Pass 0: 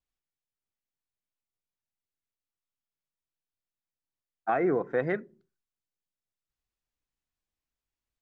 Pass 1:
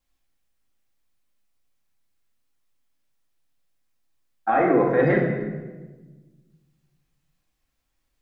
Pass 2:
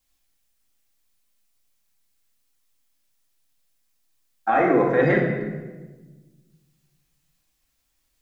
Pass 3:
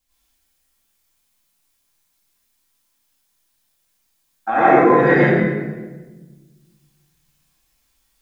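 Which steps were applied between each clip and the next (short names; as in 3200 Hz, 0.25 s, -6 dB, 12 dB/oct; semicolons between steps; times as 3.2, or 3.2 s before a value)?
in parallel at 0 dB: negative-ratio compressor -30 dBFS, ratio -0.5; on the sum: shoebox room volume 910 m³, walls mixed, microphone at 2.2 m
high shelf 3100 Hz +10 dB
plate-style reverb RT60 0.57 s, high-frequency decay 0.95×, pre-delay 80 ms, DRR -7 dB; gain -1 dB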